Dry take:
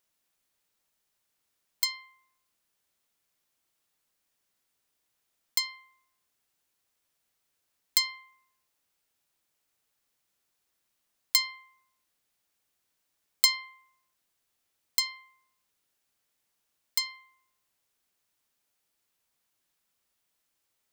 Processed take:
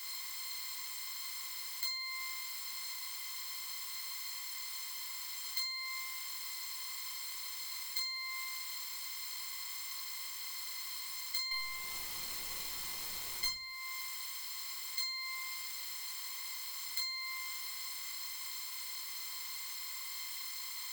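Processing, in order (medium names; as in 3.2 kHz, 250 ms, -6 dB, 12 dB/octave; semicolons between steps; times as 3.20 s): spectral levelling over time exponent 0.4; 11.51–13.48 s: waveshaping leveller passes 3; compression 20:1, threshold -36 dBFS, peak gain reduction 26.5 dB; simulated room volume 40 m³, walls mixed, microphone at 1.1 m; trim -3 dB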